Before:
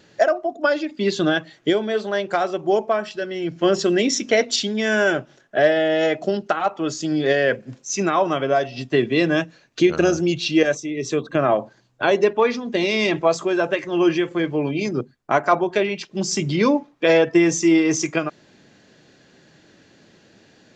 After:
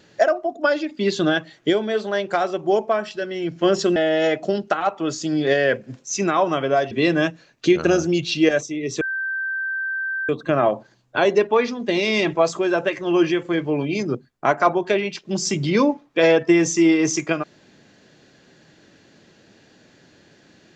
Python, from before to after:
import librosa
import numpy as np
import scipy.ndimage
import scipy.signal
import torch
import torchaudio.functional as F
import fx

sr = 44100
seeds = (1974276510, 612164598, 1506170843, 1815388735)

y = fx.edit(x, sr, fx.cut(start_s=3.96, length_s=1.79),
    fx.cut(start_s=8.7, length_s=0.35),
    fx.insert_tone(at_s=11.15, length_s=1.28, hz=1560.0, db=-22.5), tone=tone)